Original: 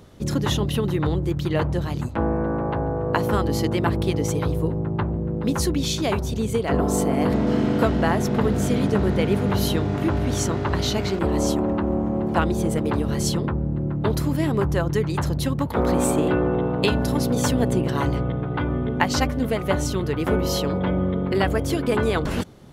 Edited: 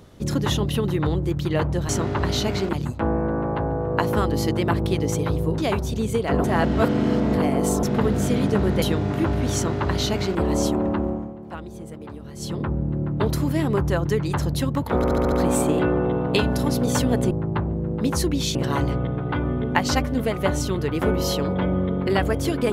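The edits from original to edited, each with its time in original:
4.74–5.98 move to 17.8
6.84–8.23 reverse
9.22–9.66 cut
10.39–11.23 copy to 1.89
11.82–13.56 dip -14.5 dB, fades 0.36 s
15.81 stutter 0.07 s, 6 plays

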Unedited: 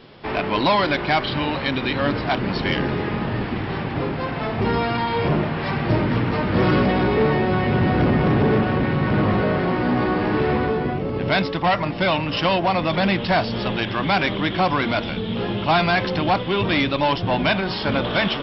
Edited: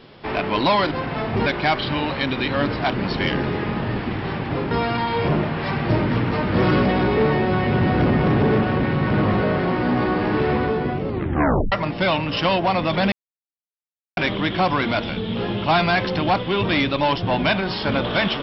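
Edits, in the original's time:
4.16–4.71 move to 0.91
11.08 tape stop 0.64 s
13.12–14.17 mute

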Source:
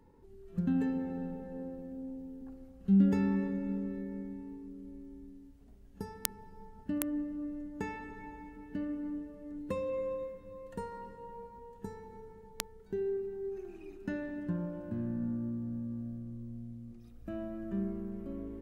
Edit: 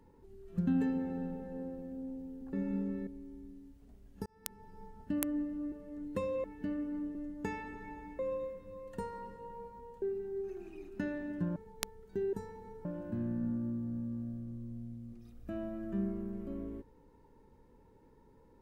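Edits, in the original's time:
2.53–3.49 cut
4.03–4.86 cut
6.05–6.58 fade in
7.51–8.55 swap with 9.26–9.98
11.81–12.33 swap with 13.1–14.64

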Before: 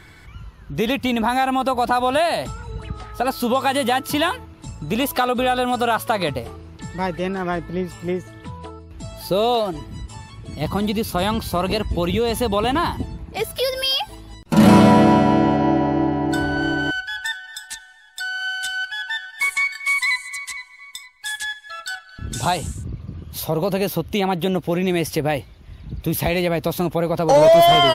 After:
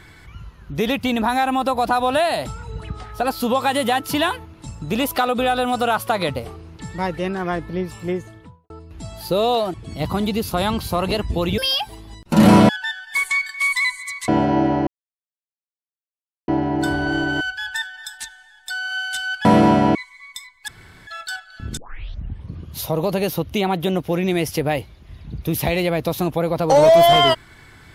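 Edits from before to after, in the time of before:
8.18–8.7 studio fade out
9.74–10.35 cut
12.19–13.78 cut
14.89–15.39 swap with 18.95–20.54
15.98 insert silence 1.61 s
21.27–21.66 room tone
22.36 tape start 0.77 s

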